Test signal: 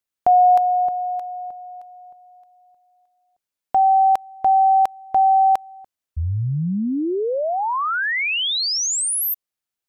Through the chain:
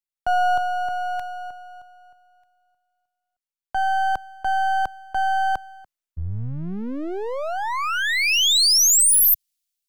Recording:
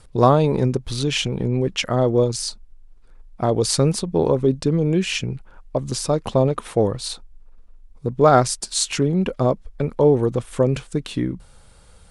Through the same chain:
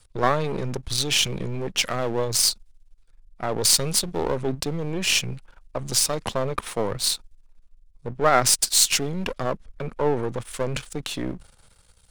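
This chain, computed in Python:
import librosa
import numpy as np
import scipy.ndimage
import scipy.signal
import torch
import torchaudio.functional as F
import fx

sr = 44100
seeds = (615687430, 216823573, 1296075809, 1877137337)

p1 = np.where(x < 0.0, 10.0 ** (-12.0 / 20.0) * x, x)
p2 = fx.over_compress(p1, sr, threshold_db=-28.0, ratio=-1.0)
p3 = p1 + (p2 * librosa.db_to_amplitude(-1.5))
p4 = fx.tilt_shelf(p3, sr, db=-4.5, hz=1500.0)
p5 = fx.band_widen(p4, sr, depth_pct=40)
y = p5 * librosa.db_to_amplitude(-2.5)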